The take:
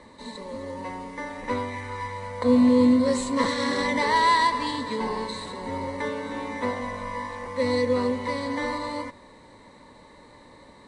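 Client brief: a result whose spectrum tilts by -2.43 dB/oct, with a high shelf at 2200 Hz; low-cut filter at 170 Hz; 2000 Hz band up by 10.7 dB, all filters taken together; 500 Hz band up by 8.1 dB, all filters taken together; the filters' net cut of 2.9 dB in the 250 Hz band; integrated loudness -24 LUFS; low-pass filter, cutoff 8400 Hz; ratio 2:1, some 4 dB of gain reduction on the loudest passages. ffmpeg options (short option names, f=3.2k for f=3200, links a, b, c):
-af "highpass=170,lowpass=8.4k,equalizer=f=250:t=o:g=-4,equalizer=f=500:t=o:g=8.5,equalizer=f=2k:t=o:g=7,highshelf=f=2.2k:g=8.5,acompressor=threshold=-18dB:ratio=2,volume=-1.5dB"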